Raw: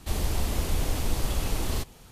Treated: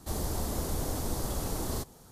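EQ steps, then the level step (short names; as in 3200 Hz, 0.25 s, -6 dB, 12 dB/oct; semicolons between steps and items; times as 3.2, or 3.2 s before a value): low shelf 78 Hz -10.5 dB; bell 2600 Hz -13.5 dB 1.1 oct; 0.0 dB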